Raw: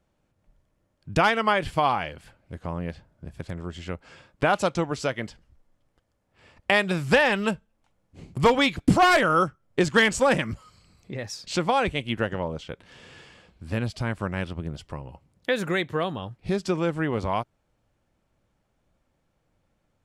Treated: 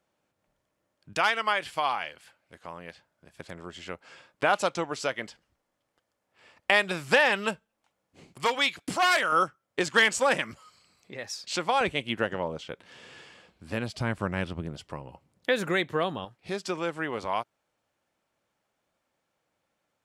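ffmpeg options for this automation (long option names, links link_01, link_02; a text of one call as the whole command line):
ffmpeg -i in.wav -af "asetnsamples=nb_out_samples=441:pad=0,asendcmd='1.13 highpass f 1300;3.39 highpass f 550;8.33 highpass f 1500;9.32 highpass f 690;11.81 highpass f 280;13.95 highpass f 96;14.66 highpass f 210;16.25 highpass f 690',highpass=frequency=480:poles=1" out.wav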